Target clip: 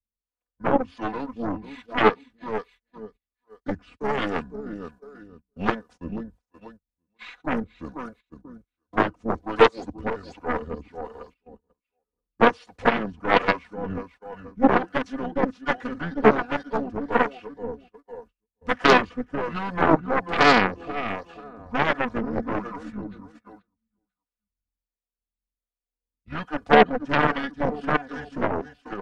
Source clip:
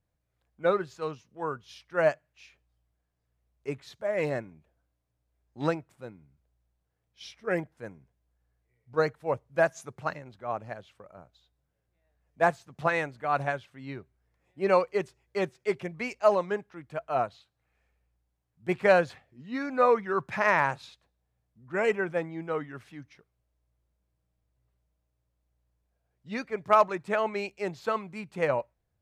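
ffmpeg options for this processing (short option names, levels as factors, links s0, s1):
-filter_complex "[0:a]aecho=1:1:487|974|1461:0.299|0.0866|0.0251,asplit=3[s0][s1][s2];[s1]asetrate=22050,aresample=44100,atempo=2,volume=0.251[s3];[s2]asetrate=37084,aresample=44100,atempo=1.18921,volume=0.126[s4];[s0][s3][s4]amix=inputs=3:normalize=0,acrossover=split=3100[s5][s6];[s6]acompressor=threshold=0.002:ratio=4:attack=1:release=60[s7];[s5][s7]amix=inputs=2:normalize=0,acrossover=split=540[s8][s9];[s8]aeval=exprs='val(0)*(1-0.7/2+0.7/2*cos(2*PI*1.3*n/s))':c=same[s10];[s9]aeval=exprs='val(0)*(1-0.7/2-0.7/2*cos(2*PI*1.3*n/s))':c=same[s11];[s10][s11]amix=inputs=2:normalize=0,aecho=1:1:2.8:0.87,agate=range=0.0631:threshold=0.002:ratio=16:detection=peak,aeval=exprs='0.316*(cos(1*acos(clip(val(0)/0.316,-1,1)))-cos(1*PI/2))+0.0158*(cos(3*acos(clip(val(0)/0.316,-1,1)))-cos(3*PI/2))+0.00562*(cos(5*acos(clip(val(0)/0.316,-1,1)))-cos(5*PI/2))+0.0562*(cos(6*acos(clip(val(0)/0.316,-1,1)))-cos(6*PI/2))+0.0708*(cos(7*acos(clip(val(0)/0.316,-1,1)))-cos(7*PI/2))':c=same,acrossover=split=190[s12][s13];[s12]acompressor=threshold=0.00398:ratio=2[s14];[s14][s13]amix=inputs=2:normalize=0,asetrate=30296,aresample=44100,atempo=1.45565,asplit=2[s15][s16];[s16]alimiter=limit=0.0891:level=0:latency=1:release=199,volume=1[s17];[s15][s17]amix=inputs=2:normalize=0,volume=1.78"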